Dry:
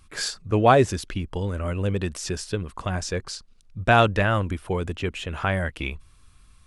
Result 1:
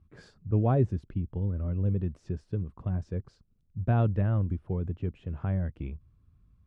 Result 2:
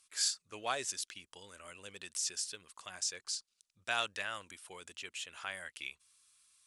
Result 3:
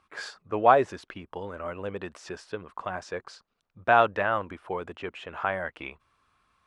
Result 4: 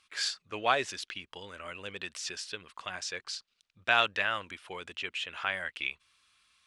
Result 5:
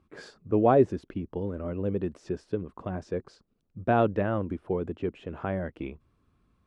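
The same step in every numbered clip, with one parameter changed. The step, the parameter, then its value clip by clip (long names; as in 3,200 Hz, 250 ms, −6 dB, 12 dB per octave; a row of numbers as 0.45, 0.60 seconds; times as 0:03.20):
resonant band-pass, frequency: 120, 8,000, 950, 3,100, 320 Hertz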